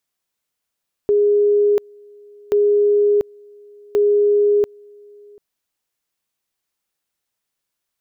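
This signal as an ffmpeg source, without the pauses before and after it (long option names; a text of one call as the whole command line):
ffmpeg -f lavfi -i "aevalsrc='pow(10,(-11.5-29*gte(mod(t,1.43),0.69))/20)*sin(2*PI*412*t)':duration=4.29:sample_rate=44100" out.wav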